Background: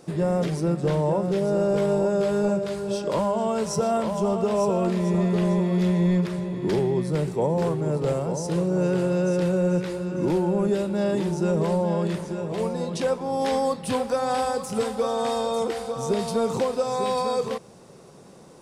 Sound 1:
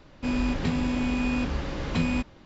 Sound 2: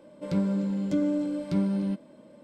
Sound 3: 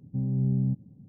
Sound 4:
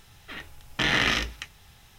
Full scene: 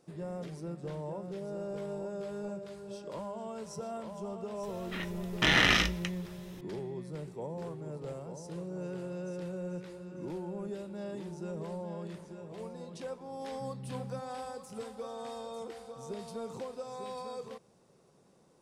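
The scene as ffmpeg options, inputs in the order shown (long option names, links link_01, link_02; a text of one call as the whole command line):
ffmpeg -i bed.wav -i cue0.wav -i cue1.wav -i cue2.wav -i cue3.wav -filter_complex "[0:a]volume=-16.5dB[link_01];[4:a]atrim=end=1.98,asetpts=PTS-STARTPTS,volume=-1dB,afade=type=in:duration=0.004:curve=hsin,afade=type=out:start_time=1.976:duration=0.004:curve=hsin,adelay=4630[link_02];[3:a]atrim=end=1.08,asetpts=PTS-STARTPTS,volume=-17dB,afade=type=in:duration=0.004:curve=hsin,afade=type=out:start_time=1.076:duration=0.004:curve=hsin,adelay=13460[link_03];[link_01][link_02][link_03]amix=inputs=3:normalize=0" out.wav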